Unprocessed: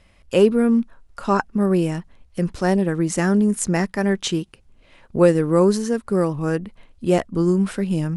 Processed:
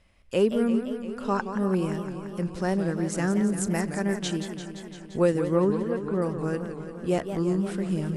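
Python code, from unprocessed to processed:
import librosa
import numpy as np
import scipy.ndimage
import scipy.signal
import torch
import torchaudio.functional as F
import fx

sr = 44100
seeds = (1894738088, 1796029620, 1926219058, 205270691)

y = fx.cheby2_lowpass(x, sr, hz=6900.0, order=4, stop_db=50, at=(5.48, 6.22))
y = fx.echo_warbled(y, sr, ms=172, feedback_pct=74, rate_hz=2.8, cents=187, wet_db=-9.5)
y = y * librosa.db_to_amplitude(-7.5)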